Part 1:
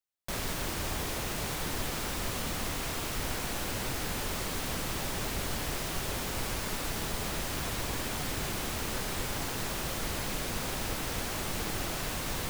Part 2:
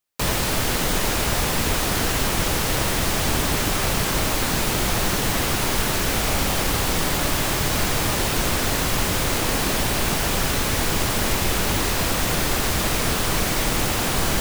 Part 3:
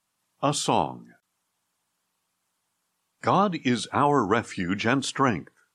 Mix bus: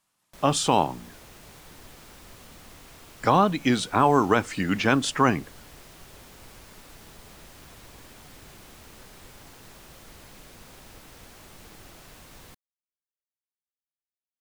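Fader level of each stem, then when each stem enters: -14.0 dB, off, +2.0 dB; 0.05 s, off, 0.00 s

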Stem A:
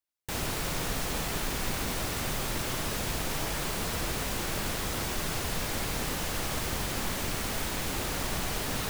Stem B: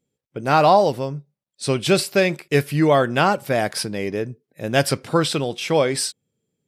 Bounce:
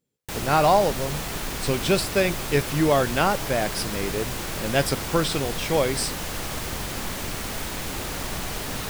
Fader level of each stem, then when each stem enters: +1.5, -4.0 dB; 0.00, 0.00 s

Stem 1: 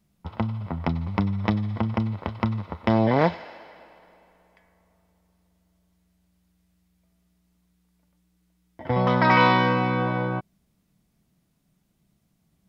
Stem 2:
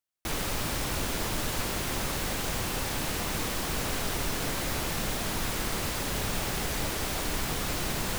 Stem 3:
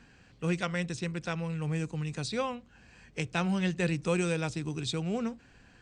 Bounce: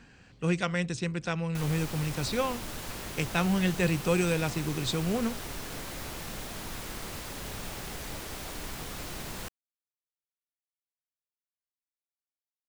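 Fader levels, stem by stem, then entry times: off, -8.0 dB, +2.5 dB; off, 1.30 s, 0.00 s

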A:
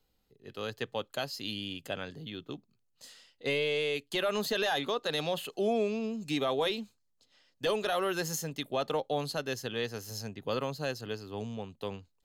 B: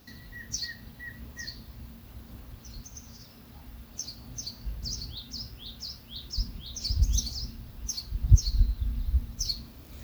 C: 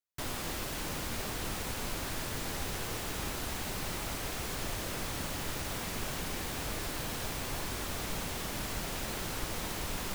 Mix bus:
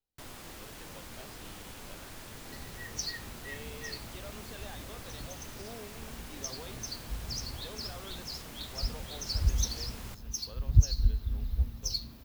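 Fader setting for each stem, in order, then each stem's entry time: -18.5, -2.5, -9.5 dB; 0.00, 2.45, 0.00 s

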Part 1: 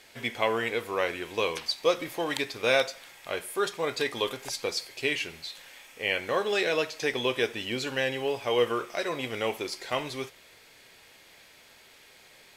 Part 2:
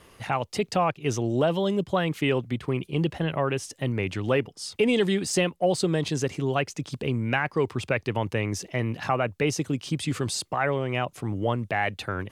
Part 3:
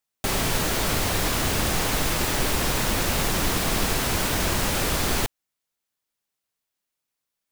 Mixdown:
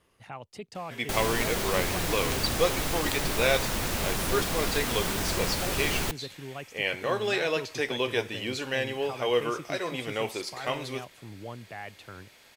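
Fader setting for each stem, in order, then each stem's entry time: -1.0, -14.5, -6.0 dB; 0.75, 0.00, 0.85 s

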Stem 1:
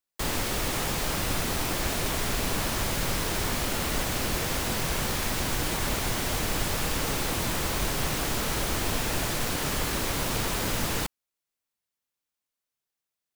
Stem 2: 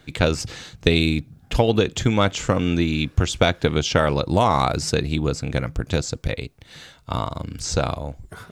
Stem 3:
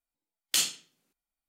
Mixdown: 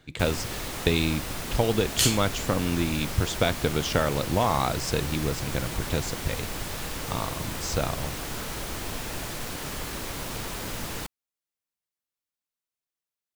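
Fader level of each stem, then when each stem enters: -5.5, -6.0, +2.5 dB; 0.00, 0.00, 1.45 s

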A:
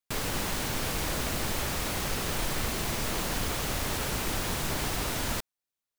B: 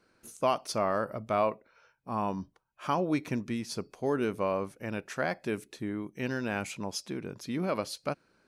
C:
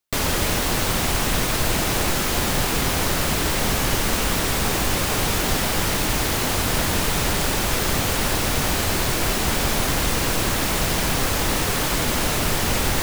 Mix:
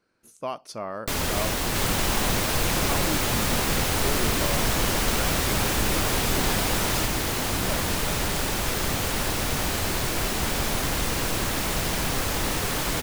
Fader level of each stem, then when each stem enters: +3.0, -4.5, -4.5 dB; 1.65, 0.00, 0.95 s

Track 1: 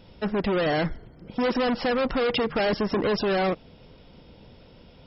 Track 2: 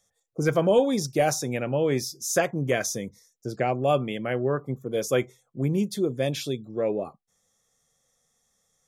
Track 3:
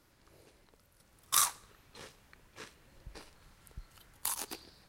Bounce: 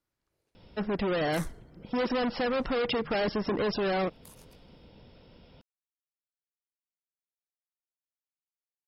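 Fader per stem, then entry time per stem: -4.5 dB, off, -19.5 dB; 0.55 s, off, 0.00 s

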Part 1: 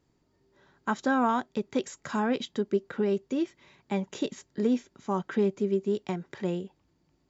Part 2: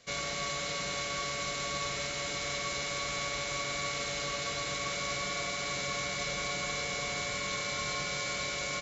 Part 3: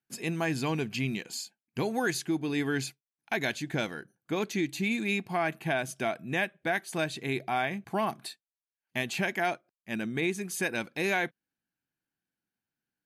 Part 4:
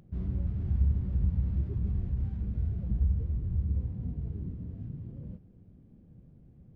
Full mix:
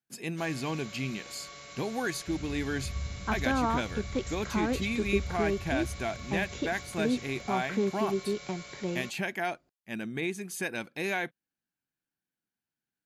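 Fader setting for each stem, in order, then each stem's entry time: -3.5, -12.0, -3.0, -9.5 dB; 2.40, 0.30, 0.00, 2.15 s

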